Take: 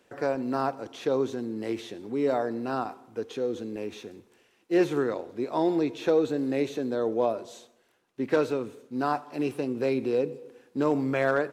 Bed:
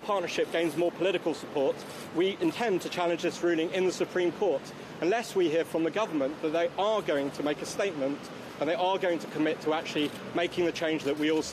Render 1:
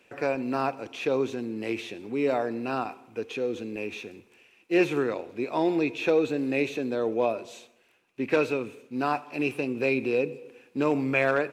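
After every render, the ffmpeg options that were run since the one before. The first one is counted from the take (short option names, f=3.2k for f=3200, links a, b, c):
-af "equalizer=f=2.5k:t=o:w=0.35:g=14.5"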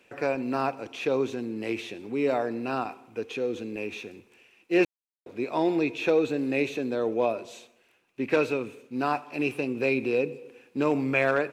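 -filter_complex "[0:a]asplit=3[a][b][c];[a]atrim=end=4.85,asetpts=PTS-STARTPTS,afade=t=out:st=4.846:d=0.004:c=hsin[d];[b]atrim=start=4.85:end=5.26,asetpts=PTS-STARTPTS,volume=0[e];[c]atrim=start=5.26,asetpts=PTS-STARTPTS,afade=t=in:d=0.004:c=hsin[f];[d][e][f]concat=n=3:v=0:a=1"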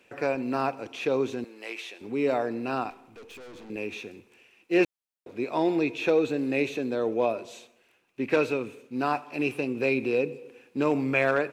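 -filter_complex "[0:a]asettb=1/sr,asplit=3[a][b][c];[a]atrim=end=1.444[d];[b]atrim=start=1.44:end=2.01,asetpts=PTS-STARTPTS,afade=t=in:d=0.004:c=qsin,afade=t=out:st=0.566:d=0.004:c=qsin,highpass=720[e];[c]atrim=start=2.006[f];[d][e]acrossfade=d=0.004:c1=hsin:c2=qsin[g];[g][f]acrossfade=d=0.004:c1=qsin:c2=hsin,asettb=1/sr,asplit=3[h][i][j];[h]atrim=end=2.904[k];[i]atrim=start=2.9:end=3.7,asetpts=PTS-STARTPTS,afade=t=in:d=0.004:c=qsin,afade=t=out:st=0.796:d=0.004:c=qsin,aeval=exprs='(tanh(158*val(0)+0.3)-tanh(0.3))/158':c=same[l];[j]atrim=start=3.696[m];[k][l]acrossfade=d=0.004:c1=hsin:c2=qsin[n];[n][m]acrossfade=d=0.004:c1=qsin:c2=hsin"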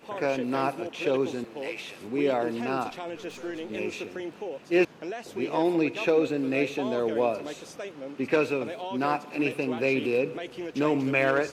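-filter_complex "[1:a]volume=-8.5dB[a];[0:a][a]amix=inputs=2:normalize=0"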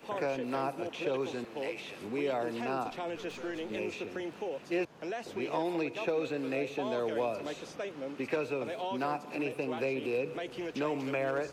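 -filter_complex "[0:a]acrossover=split=170|470|1000|4800[a][b][c][d][e];[a]acompressor=threshold=-48dB:ratio=4[f];[b]acompressor=threshold=-41dB:ratio=4[g];[c]acompressor=threshold=-33dB:ratio=4[h];[d]acompressor=threshold=-42dB:ratio=4[i];[e]acompressor=threshold=-59dB:ratio=4[j];[f][g][h][i][j]amix=inputs=5:normalize=0"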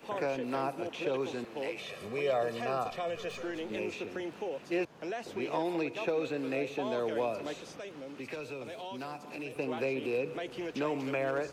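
-filter_complex "[0:a]asettb=1/sr,asplit=3[a][b][c];[a]atrim=end=1.794[d];[b]atrim=start=1.79:end=3.43,asetpts=PTS-STARTPTS,afade=t=in:d=0.004:c=qsin,afade=t=out:st=1.636:d=0.004:c=qsin,aecho=1:1:1.7:0.7,atrim=end_sample=72324[e];[c]atrim=start=3.426[f];[d][e]acrossfade=d=0.004:c1=hsin:c2=qsin[g];[g][f]acrossfade=d=0.004:c1=qsin:c2=hsin,asettb=1/sr,asplit=3[h][i][j];[h]atrim=end=7.584[k];[i]atrim=start=7.58:end=9.56,asetpts=PTS-STARTPTS,afade=t=in:d=0.004:c=qsin,afade=t=out:st=1.976:d=0.004:c=qsin,acrossover=split=120|3000[l][m][n];[m]acompressor=threshold=-44dB:ratio=2:attack=3.2:release=140:knee=2.83:detection=peak[o];[l][o][n]amix=inputs=3:normalize=0[p];[j]atrim=start=9.556[q];[k][p]acrossfade=d=0.004:c1=hsin:c2=qsin[r];[r][q]acrossfade=d=0.004:c1=qsin:c2=hsin"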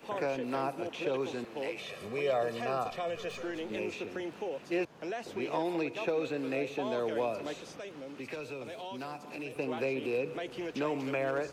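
-af anull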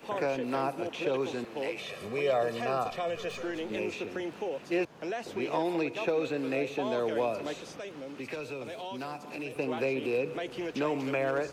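-af "volume=2.5dB"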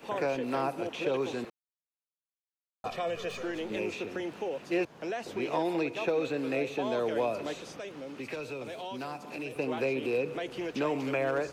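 -filter_complex "[0:a]asplit=3[a][b][c];[a]atrim=end=1.5,asetpts=PTS-STARTPTS,afade=t=out:st=1.496:d=0.004:c=hsin[d];[b]atrim=start=1.5:end=2.84,asetpts=PTS-STARTPTS,volume=0[e];[c]atrim=start=2.84,asetpts=PTS-STARTPTS,afade=t=in:d=0.004:c=hsin[f];[d][e][f]concat=n=3:v=0:a=1"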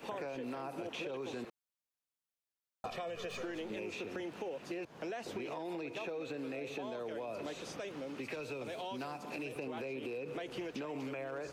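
-af "alimiter=level_in=2.5dB:limit=-24dB:level=0:latency=1:release=50,volume=-2.5dB,acompressor=threshold=-38dB:ratio=6"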